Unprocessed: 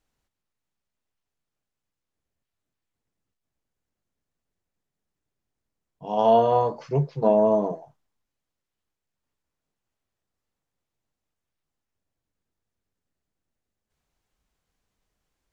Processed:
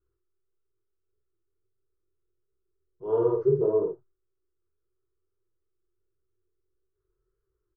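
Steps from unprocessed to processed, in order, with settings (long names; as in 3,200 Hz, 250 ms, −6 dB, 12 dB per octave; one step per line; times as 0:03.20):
drawn EQ curve 110 Hz 0 dB, 260 Hz −25 dB, 370 Hz +14 dB, 720 Hz −26 dB, 1,300 Hz −2 dB, 2,400 Hz −28 dB
in parallel at +2.5 dB: brickwall limiter −19.5 dBFS, peak gain reduction 11.5 dB
on the sum: tempo change 2×
chorus effect 1.6 Hz, delay 15.5 ms, depth 7.6 ms
double-tracking delay 48 ms −4 dB
level −3.5 dB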